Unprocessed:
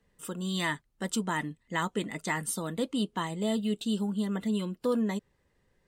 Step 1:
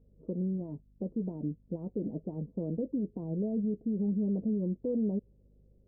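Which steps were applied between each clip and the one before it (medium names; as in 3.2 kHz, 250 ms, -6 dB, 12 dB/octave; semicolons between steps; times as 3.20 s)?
peak limiter -28 dBFS, peak gain reduction 10.5 dB; steep low-pass 580 Hz 36 dB/octave; hum 50 Hz, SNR 30 dB; trim +4 dB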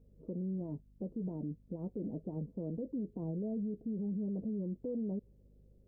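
peak limiter -31.5 dBFS, peak gain reduction 8 dB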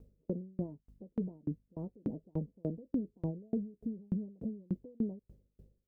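sawtooth tremolo in dB decaying 3.4 Hz, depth 37 dB; trim +8.5 dB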